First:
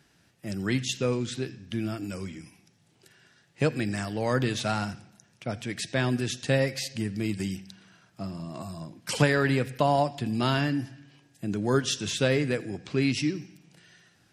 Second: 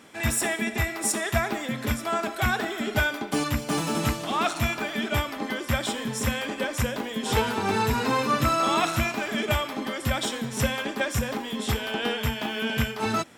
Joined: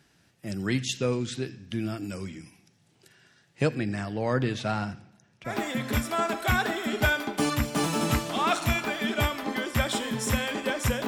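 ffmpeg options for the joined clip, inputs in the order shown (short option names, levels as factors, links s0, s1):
-filter_complex "[0:a]asettb=1/sr,asplit=3[s0][s1][s2];[s0]atrim=end=3.754[s3];[s1]atrim=start=3.75:end=5.58,asetpts=PTS-STARTPTS,afade=t=in:d=0.004:c=qsin,afade=t=out:st=1.826:d=0.004:c=qsin,lowpass=f=2800:p=1[s4];[s2]atrim=start=5.576[s5];[s3][s4]acrossfade=d=0.004:c1=hsin:c2=qsin[s6];[s6][s5]acrossfade=d=0.004:c1=qsin:c2=hsin,apad=whole_dur=11.07,atrim=end=11.07,atrim=end=5.58,asetpts=PTS-STARTPTS[s7];[1:a]atrim=start=1.38:end=7.01,asetpts=PTS-STARTPTS[s8];[s7][s8]acrossfade=d=0.14:c1=tri:c2=tri"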